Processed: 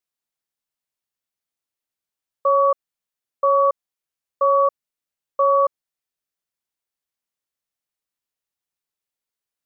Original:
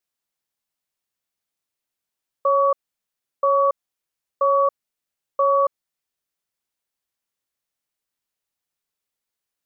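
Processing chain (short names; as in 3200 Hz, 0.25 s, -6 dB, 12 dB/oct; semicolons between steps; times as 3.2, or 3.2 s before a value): upward expander 1.5:1, over -28 dBFS; gain +1.5 dB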